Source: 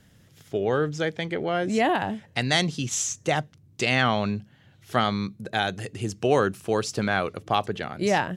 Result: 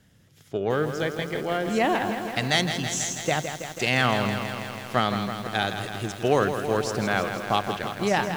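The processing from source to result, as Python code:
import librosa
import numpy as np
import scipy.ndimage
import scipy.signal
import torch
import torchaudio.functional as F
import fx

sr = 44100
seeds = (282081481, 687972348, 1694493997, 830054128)

y = fx.cheby_harmonics(x, sr, harmonics=(7,), levels_db=(-29,), full_scale_db=-6.5)
y = fx.echo_crushed(y, sr, ms=163, feedback_pct=80, bits=7, wet_db=-8)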